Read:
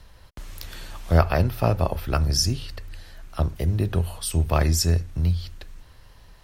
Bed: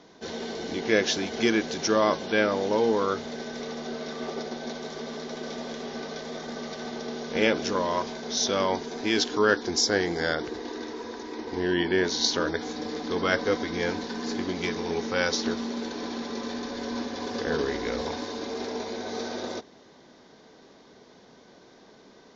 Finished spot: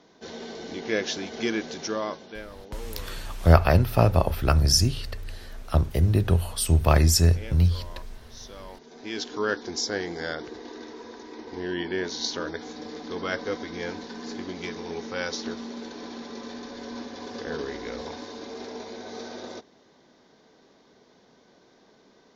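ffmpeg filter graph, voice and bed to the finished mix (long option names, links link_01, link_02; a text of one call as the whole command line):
ffmpeg -i stem1.wav -i stem2.wav -filter_complex "[0:a]adelay=2350,volume=2dB[link_01];[1:a]volume=9.5dB,afade=type=out:start_time=1.71:duration=0.72:silence=0.188365,afade=type=in:start_time=8.74:duration=0.7:silence=0.211349[link_02];[link_01][link_02]amix=inputs=2:normalize=0" out.wav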